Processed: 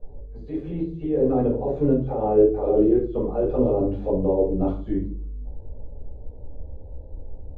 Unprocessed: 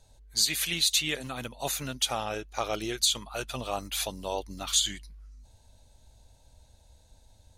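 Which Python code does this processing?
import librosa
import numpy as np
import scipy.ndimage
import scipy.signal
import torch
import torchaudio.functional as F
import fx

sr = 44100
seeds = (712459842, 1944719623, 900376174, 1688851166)

y = fx.over_compress(x, sr, threshold_db=-35.0, ratio=-1.0)
y = fx.lowpass_res(y, sr, hz=430.0, q=3.7)
y = fx.room_shoebox(y, sr, seeds[0], volume_m3=260.0, walls='furnished', distance_m=5.6)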